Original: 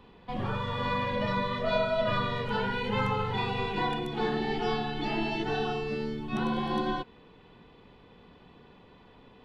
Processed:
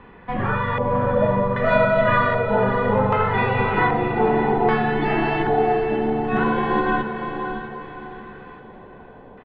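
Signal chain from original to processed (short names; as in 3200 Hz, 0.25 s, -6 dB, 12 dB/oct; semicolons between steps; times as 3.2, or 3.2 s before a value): 0.9–1.74 CVSD 64 kbps; LFO low-pass square 0.64 Hz 700–1800 Hz; downsampling 16000 Hz; diffused feedback echo 0.603 s, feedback 40%, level -7 dB; gain +8 dB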